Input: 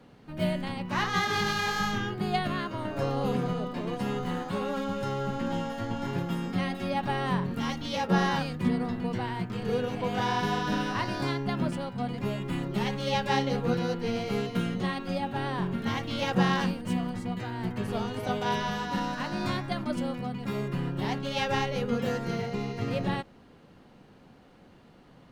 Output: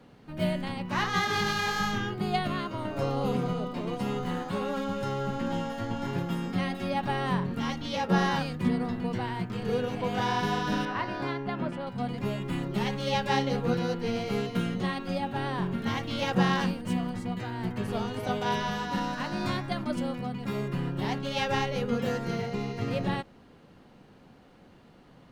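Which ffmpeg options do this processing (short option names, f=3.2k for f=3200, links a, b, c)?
-filter_complex "[0:a]asettb=1/sr,asplit=3[a][b][c];[a]atrim=end=2.134[d];[b]atrim=start=2.13:end=4.22,asetpts=PTS-STARTPTS,afade=t=in:d=0.004:c=qsin,afade=t=out:st=2.086:d=0.004:c=qsin,bandreject=f=1.7k:w=10[e];[c]atrim=start=4.216[f];[d][e]acrossfade=d=0.004:c1=hsin:c2=qsin[g];[g][f]acrossfade=d=0.004:c1=qsin:c2=hsin,asettb=1/sr,asplit=3[h][i][j];[h]atrim=end=7.434[k];[i]atrim=start=7.43:end=8.07,asetpts=PTS-STARTPTS,afade=t=in:d=0.004:c=qsin,afade=t=out:st=0.636:d=0.004:c=qsin,highshelf=f=8k:g=-5.5[l];[j]atrim=start=8.066[m];[k][l]acrossfade=d=0.004:c1=hsin:c2=qsin[n];[n][m]acrossfade=d=0.004:c1=qsin:c2=hsin,asettb=1/sr,asplit=3[o][p][q];[o]atrim=end=10.854[r];[p]atrim=start=10.85:end=11.87,asetpts=PTS-STARTPTS,afade=t=in:d=0.004:c=qsin,afade=t=out:st=1.016:d=0.004:c=qsin,bass=f=250:g=-6,treble=f=4k:g=-14[s];[q]atrim=start=11.866[t];[r][s]acrossfade=d=0.004:c1=hsin:c2=qsin[u];[u][t]acrossfade=d=0.004:c1=qsin:c2=hsin"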